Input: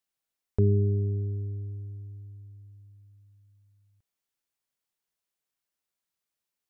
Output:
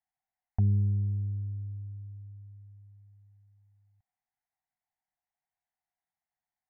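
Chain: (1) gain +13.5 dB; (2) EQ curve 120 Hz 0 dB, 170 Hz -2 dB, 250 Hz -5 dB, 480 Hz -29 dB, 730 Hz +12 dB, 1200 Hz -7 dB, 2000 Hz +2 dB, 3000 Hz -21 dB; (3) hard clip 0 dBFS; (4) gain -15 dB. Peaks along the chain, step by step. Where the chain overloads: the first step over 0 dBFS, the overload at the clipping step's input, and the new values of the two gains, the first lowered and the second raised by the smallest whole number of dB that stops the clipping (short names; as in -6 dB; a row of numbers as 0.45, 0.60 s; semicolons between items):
-1.5, -3.0, -3.0, -18.0 dBFS; no overload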